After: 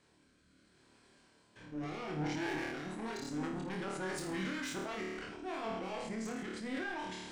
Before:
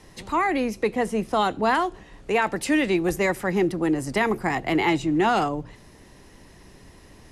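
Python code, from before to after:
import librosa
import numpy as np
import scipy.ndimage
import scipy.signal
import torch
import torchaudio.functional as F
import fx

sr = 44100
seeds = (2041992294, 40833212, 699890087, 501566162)

p1 = x[::-1].copy()
p2 = fx.highpass(p1, sr, hz=370.0, slope=6)
p3 = fx.peak_eq(p2, sr, hz=3100.0, db=2.0, octaves=0.78)
p4 = fx.level_steps(p3, sr, step_db=17)
p5 = 10.0 ** (-36.0 / 20.0) * np.tanh(p4 / 10.0 ** (-36.0 / 20.0))
p6 = fx.rotary_switch(p5, sr, hz=0.7, then_hz=6.7, switch_at_s=2.52)
p7 = np.clip(p6, -10.0 ** (-37.5 / 20.0), 10.0 ** (-37.5 / 20.0))
p8 = p6 + F.gain(torch.from_numpy(p7), -11.0).numpy()
p9 = fx.formant_shift(p8, sr, semitones=-4)
p10 = fx.room_flutter(p9, sr, wall_m=4.6, rt60_s=0.58)
p11 = fx.sustainer(p10, sr, db_per_s=27.0)
y = F.gain(torch.from_numpy(p11), -2.5).numpy()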